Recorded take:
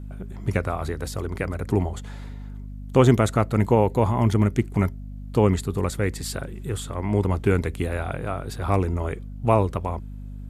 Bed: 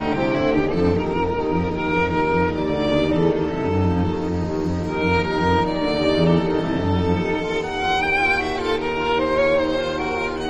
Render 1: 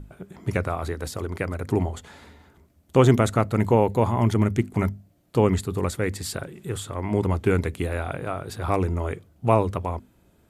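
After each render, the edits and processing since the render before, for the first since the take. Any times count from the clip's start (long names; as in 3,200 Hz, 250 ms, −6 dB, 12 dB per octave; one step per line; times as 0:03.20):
mains-hum notches 50/100/150/200/250 Hz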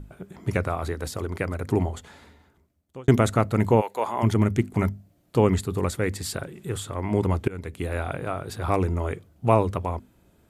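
0:01.88–0:03.08: fade out
0:03.80–0:04.22: high-pass filter 1,100 Hz → 360 Hz
0:07.48–0:07.98: fade in, from −24 dB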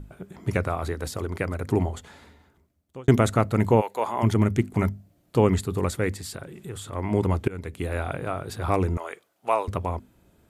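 0:06.13–0:06.93: downward compressor 2 to 1, threshold −36 dBFS
0:08.97–0:09.68: high-pass filter 680 Hz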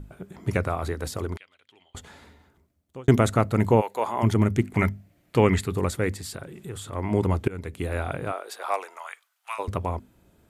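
0:01.37–0:01.95: resonant band-pass 3,200 Hz, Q 8.5
0:04.65–0:05.73: parametric band 2,100 Hz +9.5 dB 1 octave
0:08.31–0:09.58: high-pass filter 380 Hz → 1,400 Hz 24 dB per octave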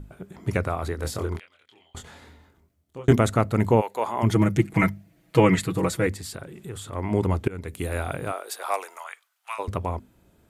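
0:00.96–0:03.13: double-tracking delay 25 ms −4 dB
0:04.30–0:06.07: comb filter 6.2 ms, depth 93%
0:07.68–0:09.04: high-shelf EQ 6,900 Hz +11.5 dB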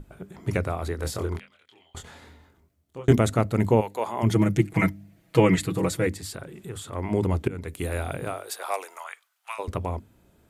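mains-hum notches 50/100/150/200/250/300 Hz
dynamic equaliser 1,200 Hz, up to −4 dB, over −35 dBFS, Q 1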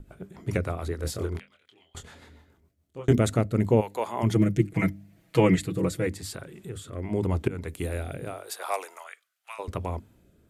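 rotating-speaker cabinet horn 7 Hz, later 0.85 Hz, at 0:02.64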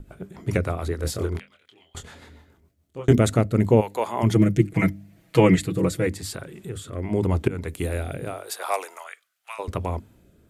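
level +4 dB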